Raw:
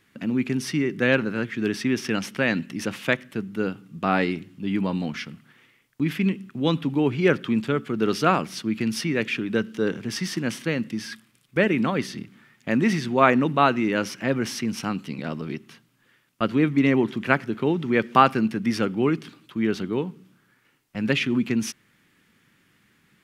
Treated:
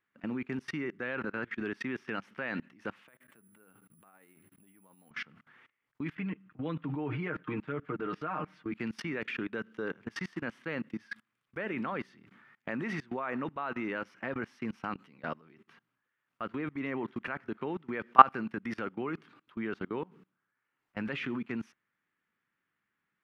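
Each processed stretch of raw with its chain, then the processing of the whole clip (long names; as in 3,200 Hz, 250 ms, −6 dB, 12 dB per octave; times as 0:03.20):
0:03.08–0:05.11: downward compressor 3 to 1, threshold −39 dBFS + amplitude tremolo 13 Hz, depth 71% + bad sample-rate conversion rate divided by 4×, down filtered, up zero stuff
0:06.15–0:08.72: bass and treble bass +3 dB, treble −12 dB + comb filter 6.5 ms, depth 78%
whole clip: parametric band 1,300 Hz +14 dB 2.8 octaves; output level in coarse steps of 24 dB; high-shelf EQ 2,900 Hz −8.5 dB; level −10 dB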